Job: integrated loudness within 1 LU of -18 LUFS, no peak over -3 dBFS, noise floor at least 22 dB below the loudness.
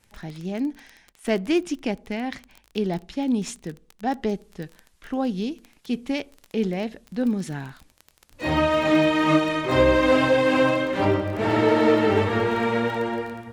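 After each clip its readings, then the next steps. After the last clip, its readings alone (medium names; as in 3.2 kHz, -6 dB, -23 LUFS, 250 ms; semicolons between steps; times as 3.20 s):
tick rate 20 per s; loudness -23.5 LUFS; peak level -5.5 dBFS; loudness target -18.0 LUFS
-> de-click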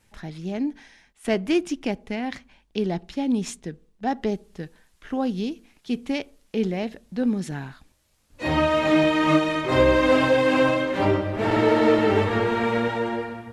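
tick rate 0 per s; loudness -23.5 LUFS; peak level -5.5 dBFS; loudness target -18.0 LUFS
-> trim +5.5 dB; peak limiter -3 dBFS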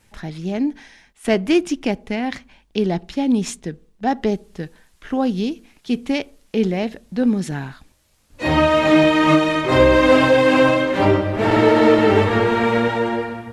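loudness -18.0 LUFS; peak level -3.0 dBFS; noise floor -59 dBFS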